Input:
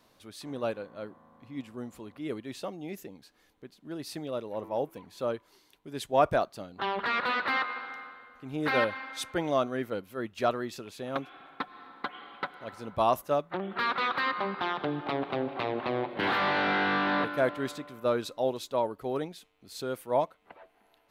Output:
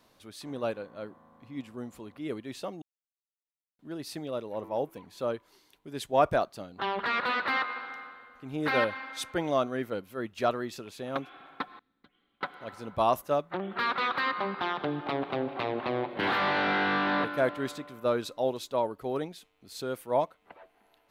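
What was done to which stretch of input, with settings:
2.82–3.79 mute
11.79–12.41 passive tone stack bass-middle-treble 10-0-1

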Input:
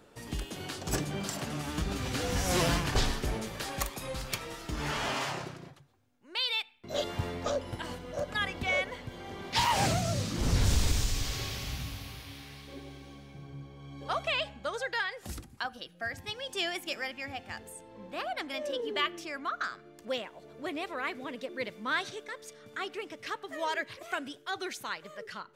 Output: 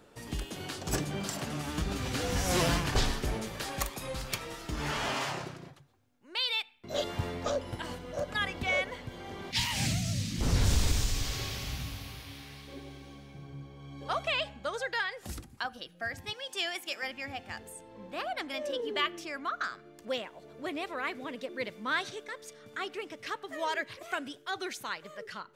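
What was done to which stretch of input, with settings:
9.51–10.41 band shelf 710 Hz -13.5 dB 2.4 oct
16.33–17.03 HPF 590 Hz 6 dB/oct

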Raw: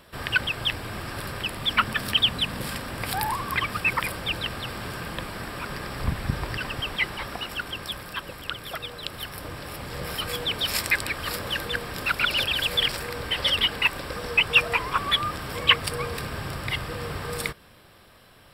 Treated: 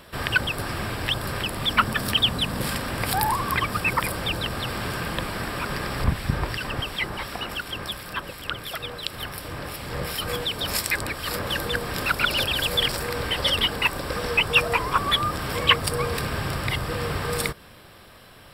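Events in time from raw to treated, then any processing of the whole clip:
0.58–1.21 reverse
6.04–11.5 harmonic tremolo 2.8 Hz, depth 50%, crossover 2200 Hz
whole clip: dynamic EQ 2500 Hz, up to -6 dB, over -35 dBFS, Q 0.85; gain +5 dB

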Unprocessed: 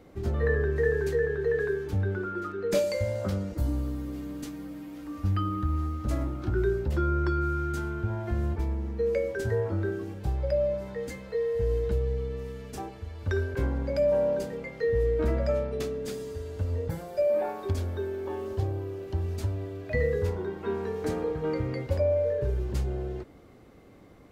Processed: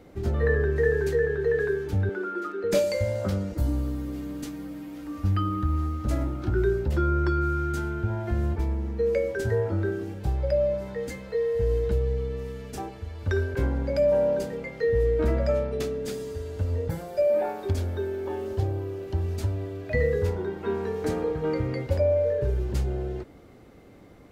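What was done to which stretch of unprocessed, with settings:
2.09–2.64 HPF 240 Hz 24 dB/oct
whole clip: notch 1100 Hz, Q 18; gain +2.5 dB

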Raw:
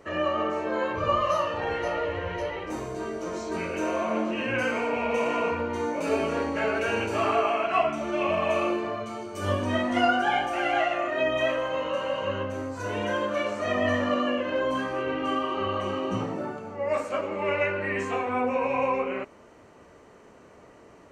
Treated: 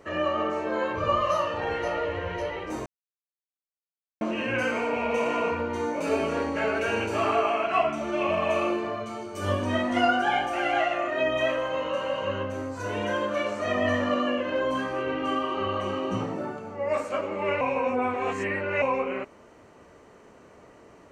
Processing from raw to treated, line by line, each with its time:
2.86–4.21 mute
17.61–18.82 reverse

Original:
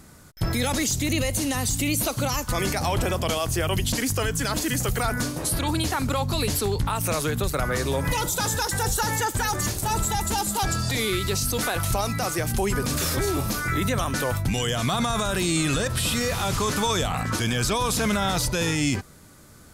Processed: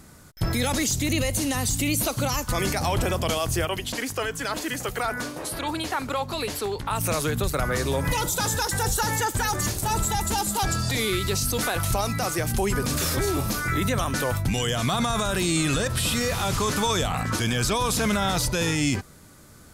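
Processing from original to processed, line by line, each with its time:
3.65–6.91 tone controls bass -12 dB, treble -7 dB

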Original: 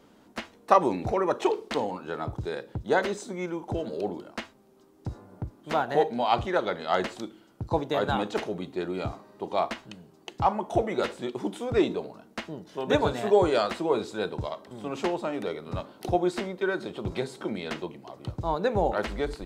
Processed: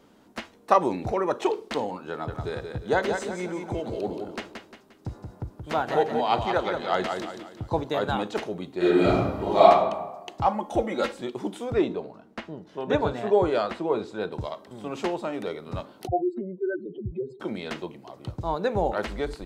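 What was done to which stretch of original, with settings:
2.1–7.89 feedback echo 0.176 s, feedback 40%, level -6 dB
8.77–9.69 reverb throw, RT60 1.1 s, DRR -10.5 dB
10.47–11.21 comb 3.7 ms
11.74–14.32 LPF 2500 Hz 6 dB/oct
16.07–17.4 spectral contrast raised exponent 3.3

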